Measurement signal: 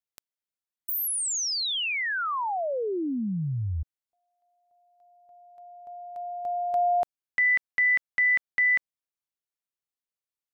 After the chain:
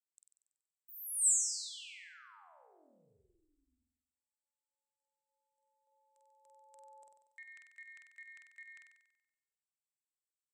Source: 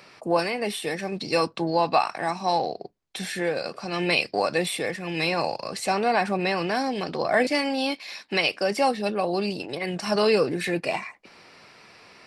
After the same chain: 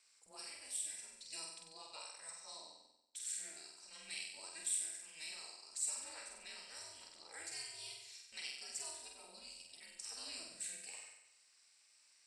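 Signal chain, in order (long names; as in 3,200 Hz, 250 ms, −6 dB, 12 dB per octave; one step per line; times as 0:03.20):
harmonic generator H 2 −32 dB, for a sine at −8 dBFS
resonant band-pass 7,900 Hz, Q 8
ring modulation 160 Hz
flutter between parallel walls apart 8.1 metres, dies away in 0.86 s
level +5 dB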